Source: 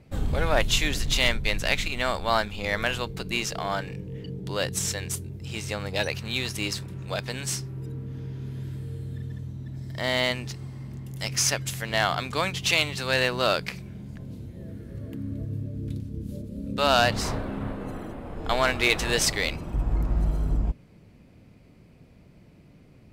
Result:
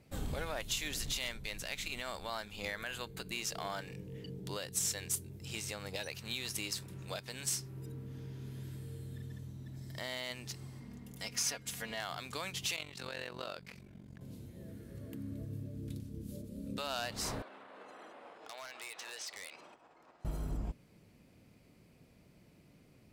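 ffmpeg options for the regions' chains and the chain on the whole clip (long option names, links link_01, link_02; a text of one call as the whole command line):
ffmpeg -i in.wav -filter_complex "[0:a]asettb=1/sr,asplit=3[link_01][link_02][link_03];[link_01]atrim=end=2.684[link_04];[link_02]atrim=start=2.68:end=3.3,asetpts=PTS-STARTPTS,afade=type=in:duration=0.004:curve=qsin,afade=type=out:start_time=0.616:duration=0.004:curve=qsin,equalizer=frequency=1600:width=4.4:gain=5,bandreject=frequency=5500:width=6.4[link_05];[link_03]atrim=start=3.296[link_06];[link_04][link_05]acrossfade=duration=0.004:curve1=hsin:curve2=qsin[link_07];[link_07][link_06]acrossfade=duration=0.004:curve1=qsin:curve2=hsin,asettb=1/sr,asplit=3[link_08][link_09][link_10];[link_08]atrim=end=10.804[link_11];[link_09]atrim=start=10.8:end=12,asetpts=PTS-STARTPTS,afade=type=in:duration=0.004:curve=qsin,afade=type=out:start_time=1.196:duration=0.004:curve=qsin,highshelf=frequency=4400:gain=-8,aecho=1:1:4.2:0.61,atrim=end_sample=52920[link_12];[link_10]atrim=start=11.996[link_13];[link_11][link_12]acrossfade=duration=0.004:curve1=hsin:curve2=qsin[link_14];[link_14][link_13]acrossfade=duration=0.004:curve1=qsin:curve2=hsin,asettb=1/sr,asplit=3[link_15][link_16][link_17];[link_15]atrim=end=12.764[link_18];[link_16]atrim=start=12.76:end=14.21,asetpts=PTS-STARTPTS,afade=type=in:duration=0.004:curve=qsin,afade=type=out:start_time=1.446:duration=0.004:curve=qsin,highshelf=frequency=4900:gain=-10.5,tremolo=f=46:d=0.857[link_19];[link_17]atrim=start=14.206[link_20];[link_18][link_19]acrossfade=duration=0.004:curve1=hsin:curve2=qsin[link_21];[link_21][link_20]acrossfade=duration=0.004:curve1=qsin:curve2=hsin,asettb=1/sr,asplit=3[link_22][link_23][link_24];[link_22]atrim=end=17.424[link_25];[link_23]atrim=start=17.42:end=20.25,asetpts=PTS-STARTPTS,afade=type=in:duration=0.004:curve=qsin,afade=type=out:start_time=2.826:duration=0.004:curve=qsin,acompressor=threshold=-32dB:ratio=12:attack=3.2:release=140:knee=1:detection=peak,highpass=600,lowpass=5200,aeval=exprs='0.0237*(abs(mod(val(0)/0.0237+3,4)-2)-1)':channel_layout=same[link_26];[link_24]atrim=start=20.246[link_27];[link_25][link_26]acrossfade=duration=0.004:curve1=hsin:curve2=qsin[link_28];[link_28][link_27]acrossfade=duration=0.004:curve1=qsin:curve2=hsin,lowshelf=frequency=120:gain=-6.5,alimiter=limit=-21dB:level=0:latency=1:release=279,aemphasis=mode=production:type=cd,volume=-7dB" out.wav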